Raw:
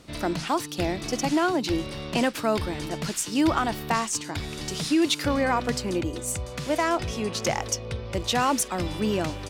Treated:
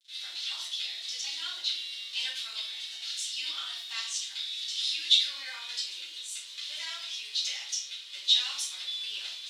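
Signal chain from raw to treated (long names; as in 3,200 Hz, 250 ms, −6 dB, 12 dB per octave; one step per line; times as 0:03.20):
bit reduction 7 bits
four-pole ladder band-pass 4,000 Hz, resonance 65%
rectangular room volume 84 cubic metres, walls mixed, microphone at 2.4 metres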